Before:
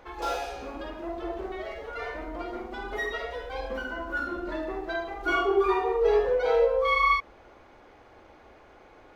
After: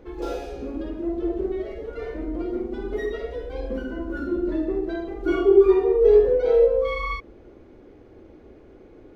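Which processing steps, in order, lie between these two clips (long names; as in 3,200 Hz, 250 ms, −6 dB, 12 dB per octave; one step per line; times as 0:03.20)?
low shelf with overshoot 560 Hz +13.5 dB, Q 1.5
level −5.5 dB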